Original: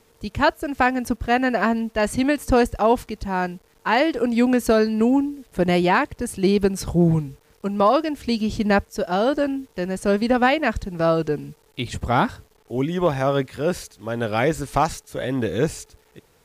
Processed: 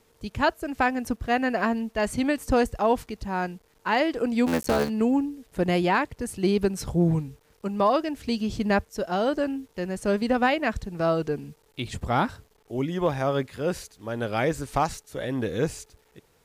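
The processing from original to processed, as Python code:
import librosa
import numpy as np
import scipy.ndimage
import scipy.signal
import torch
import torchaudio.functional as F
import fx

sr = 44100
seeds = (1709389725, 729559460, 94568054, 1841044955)

y = fx.cycle_switch(x, sr, every=3, mode='muted', at=(4.46, 4.88), fade=0.02)
y = F.gain(torch.from_numpy(y), -4.5).numpy()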